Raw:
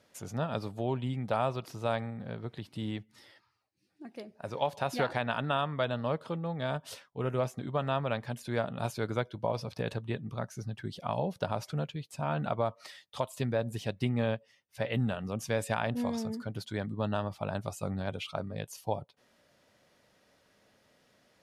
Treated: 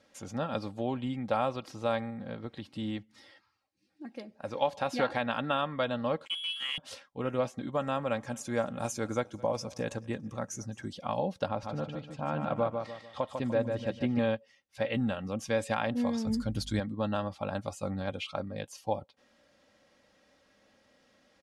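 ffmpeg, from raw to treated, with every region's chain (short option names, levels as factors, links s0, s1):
-filter_complex "[0:a]asettb=1/sr,asplit=3[s0][s1][s2];[s0]atrim=end=6.254[s3];[s1]atrim=start=6.25:end=6.78,asetpts=PTS-STARTPTS,afade=t=in:d=0.004:c=qsin,afade=t=out:st=0.526:d=0.004:c=qsin,lowpass=f=3000:t=q:w=0.5098,lowpass=f=3000:t=q:w=0.6013,lowpass=f=3000:t=q:w=0.9,lowpass=f=3000:t=q:w=2.563,afreqshift=-3500,aeval=exprs='sgn(val(0))*max(abs(val(0))-0.00422,0)':c=same,highpass=230[s4];[s2]atrim=start=6.776[s5];[s3][s4]acrossfade=d=0.004:c1=hsin:c2=qsin[s6];[s6][s5]acrossfade=d=0.004:c1=qsin:c2=hsin,asettb=1/sr,asplit=3[s7][s8][s9];[s7]atrim=end=7.724[s10];[s8]atrim=start=7.72:end=10.93,asetpts=PTS-STARTPTS,afade=t=in:d=0.004:c=qsin,afade=t=out:st=3.206:d=0.004:c=qsin,highshelf=f=5200:t=q:w=3:g=7,aecho=1:1:217|434|651:0.0631|0.0328|0.0171,atrim=end_sample=141561[s11];[s9]atrim=start=10.926[s12];[s10][s11]acrossfade=d=0.004:c1=hsin:c2=qsin[s13];[s13][s12]acrossfade=d=0.004:c1=qsin:c2=hsin,asettb=1/sr,asplit=3[s14][s15][s16];[s14]atrim=end=11.484[s17];[s15]atrim=start=11.48:end=14.19,asetpts=PTS-STARTPTS,afade=t=in:d=0.004:c=qsin,afade=t=out:st=2.706:d=0.004:c=qsin,aemphasis=mode=reproduction:type=75kf,aecho=1:1:148|296|444|592:0.531|0.191|0.0688|0.0248,atrim=end_sample=119511[s18];[s16]atrim=start=14.186[s19];[s17][s18]acrossfade=d=0.004:c1=hsin:c2=qsin[s20];[s20][s19]acrossfade=d=0.004:c1=qsin:c2=hsin,asettb=1/sr,asplit=3[s21][s22][s23];[s21]atrim=end=16.274[s24];[s22]atrim=start=16.27:end=16.8,asetpts=PTS-STARTPTS,afade=t=in:d=0.004:c=qsin,afade=t=out:st=0.526:d=0.004:c=qsin,bass=f=250:g=9,treble=f=4000:g=12,aeval=exprs='val(0)+0.00501*(sin(2*PI*50*n/s)+sin(2*PI*2*50*n/s)/2+sin(2*PI*3*50*n/s)/3+sin(2*PI*4*50*n/s)/4+sin(2*PI*5*50*n/s)/5)':c=same[s25];[s23]atrim=start=16.796[s26];[s24][s25]acrossfade=d=0.004:c1=hsin:c2=qsin[s27];[s27][s26]acrossfade=d=0.004:c1=qsin:c2=hsin,lowpass=8000,aecho=1:1:3.7:0.5"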